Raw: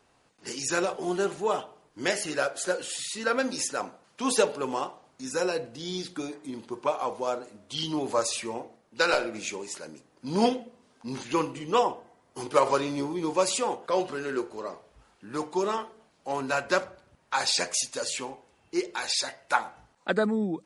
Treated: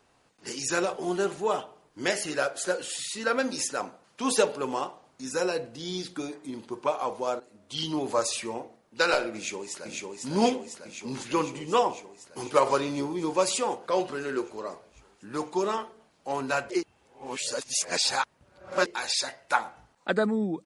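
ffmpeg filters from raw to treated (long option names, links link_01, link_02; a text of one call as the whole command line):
ffmpeg -i in.wav -filter_complex "[0:a]asplit=2[link_01][link_02];[link_02]afade=type=in:start_time=9.35:duration=0.01,afade=type=out:start_time=9.91:duration=0.01,aecho=0:1:500|1000|1500|2000|2500|3000|3500|4000|4500|5000|5500|6000:0.749894|0.562421|0.421815|0.316362|0.237271|0.177953|0.133465|0.100099|0.0750741|0.0563056|0.0422292|0.0316719[link_03];[link_01][link_03]amix=inputs=2:normalize=0,asplit=4[link_04][link_05][link_06][link_07];[link_04]atrim=end=7.4,asetpts=PTS-STARTPTS,afade=type=out:start_time=7.396:duration=0.004:curve=hsin:silence=0.223872[link_08];[link_05]atrim=start=7.4:end=16.702,asetpts=PTS-STARTPTS,afade=type=in:duration=0.4:silence=0.223872[link_09];[link_06]atrim=start=16.698:end=18.862,asetpts=PTS-STARTPTS,areverse[link_10];[link_07]atrim=start=18.858[link_11];[link_08][link_09]concat=n=2:v=0:a=1[link_12];[link_12][link_10]acrossfade=duration=0.004:curve1=hsin:curve2=hsin[link_13];[link_13][link_11]acrossfade=duration=0.004:curve1=hsin:curve2=hsin" out.wav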